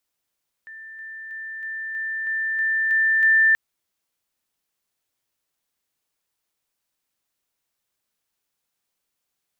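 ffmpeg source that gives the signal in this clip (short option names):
-f lavfi -i "aevalsrc='pow(10,(-37+3*floor(t/0.32))/20)*sin(2*PI*1780*t)':d=2.88:s=44100"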